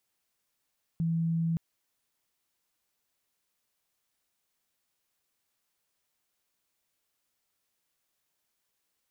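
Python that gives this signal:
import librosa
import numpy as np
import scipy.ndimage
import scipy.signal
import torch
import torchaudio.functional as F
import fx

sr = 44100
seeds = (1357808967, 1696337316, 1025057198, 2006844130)

y = 10.0 ** (-25.5 / 20.0) * np.sin(2.0 * np.pi * (165.0 * (np.arange(round(0.57 * sr)) / sr)))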